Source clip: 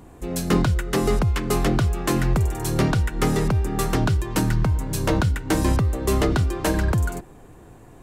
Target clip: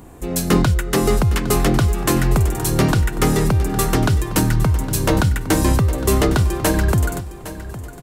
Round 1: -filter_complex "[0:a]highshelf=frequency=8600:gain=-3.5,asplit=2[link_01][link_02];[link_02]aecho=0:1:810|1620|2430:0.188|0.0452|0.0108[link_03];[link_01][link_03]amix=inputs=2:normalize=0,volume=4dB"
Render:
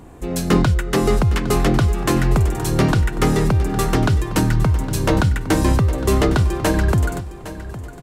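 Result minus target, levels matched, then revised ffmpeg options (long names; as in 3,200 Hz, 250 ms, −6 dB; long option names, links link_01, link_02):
8,000 Hz band −4.5 dB
-filter_complex "[0:a]highshelf=frequency=8600:gain=7.5,asplit=2[link_01][link_02];[link_02]aecho=0:1:810|1620|2430:0.188|0.0452|0.0108[link_03];[link_01][link_03]amix=inputs=2:normalize=0,volume=4dB"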